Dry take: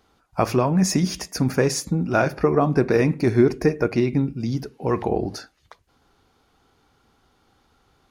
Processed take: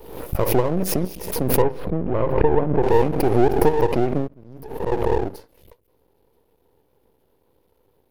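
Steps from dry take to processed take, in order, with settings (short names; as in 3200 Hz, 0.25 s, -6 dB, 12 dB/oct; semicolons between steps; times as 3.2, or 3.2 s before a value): EQ curve 240 Hz 0 dB, 510 Hz +14 dB, 910 Hz -22 dB, 2500 Hz -5 dB, 7000 Hz -13 dB, 13000 Hz +13 dB; in parallel at -1.5 dB: limiter -9 dBFS, peak gain reduction 11 dB; 4.28–4.92 on the sum: auto swell 0.649 s; half-wave rectifier; 1.62–2.83 air absorption 480 m; backwards sustainer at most 64 dB/s; gain -6.5 dB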